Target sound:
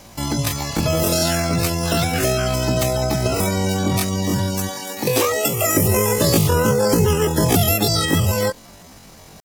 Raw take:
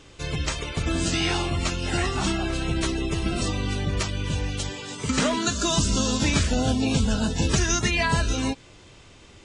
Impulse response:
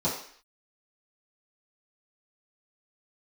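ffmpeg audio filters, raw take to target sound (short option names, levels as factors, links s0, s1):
-filter_complex "[0:a]acrossover=split=430|3000[s0][s1][s2];[s1]acompressor=threshold=0.0316:ratio=3[s3];[s0][s3][s2]amix=inputs=3:normalize=0,asetrate=85689,aresample=44100,atempo=0.514651,volume=2.11"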